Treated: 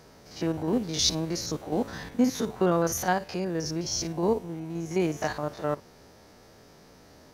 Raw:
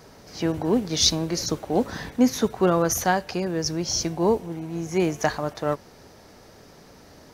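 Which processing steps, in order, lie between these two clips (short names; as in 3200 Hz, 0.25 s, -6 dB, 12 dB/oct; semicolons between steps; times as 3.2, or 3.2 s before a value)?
stepped spectrum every 50 ms; gain -3 dB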